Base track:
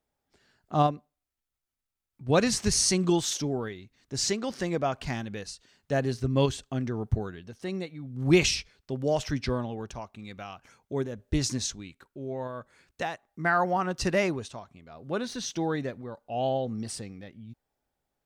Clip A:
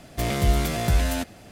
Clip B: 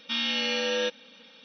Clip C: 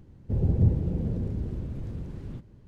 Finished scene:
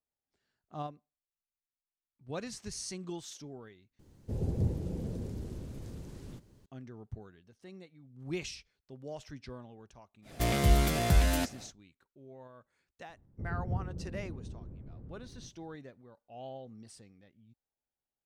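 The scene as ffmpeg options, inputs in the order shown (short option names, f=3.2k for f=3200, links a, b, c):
-filter_complex "[3:a]asplit=2[a][b];[0:a]volume=-16.5dB[c];[a]bass=f=250:g=-6,treble=f=4k:g=14[d];[b]lowpass=1.2k[e];[c]asplit=2[f][g];[f]atrim=end=3.994[h];[d]atrim=end=2.67,asetpts=PTS-STARTPTS,volume=-3.5dB[i];[g]atrim=start=6.656[j];[1:a]atrim=end=1.51,asetpts=PTS-STARTPTS,volume=-3.5dB,afade=t=in:d=0.1,afade=t=out:st=1.41:d=0.1,adelay=10220[k];[e]atrim=end=2.67,asetpts=PTS-STARTPTS,volume=-13dB,afade=t=in:d=0.004:c=hsin,afade=t=out:st=2.666:d=0.004:c=hsin,adelay=13090[l];[h][i]acrossfade=d=0.004:c1=hsin:c2=hsin[m];[m][j]acrossfade=d=0.004:c1=hsin:c2=hsin[n];[n][k][l]amix=inputs=3:normalize=0"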